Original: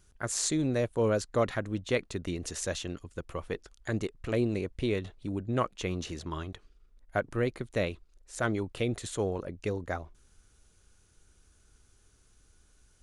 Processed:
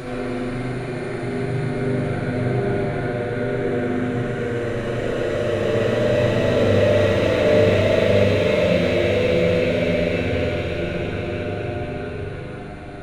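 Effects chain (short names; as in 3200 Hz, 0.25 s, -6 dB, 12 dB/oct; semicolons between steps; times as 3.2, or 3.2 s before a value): regenerating reverse delay 0.229 s, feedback 71%, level -12 dB; overloaded stage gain 27.5 dB; Paulstretch 27×, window 0.25 s, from 7.53; spring tank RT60 1.6 s, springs 40/60 ms, chirp 25 ms, DRR -5.5 dB; gain +6.5 dB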